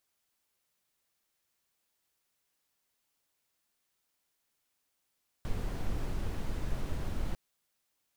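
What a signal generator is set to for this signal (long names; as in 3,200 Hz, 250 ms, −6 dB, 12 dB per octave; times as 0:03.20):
noise brown, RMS −32 dBFS 1.90 s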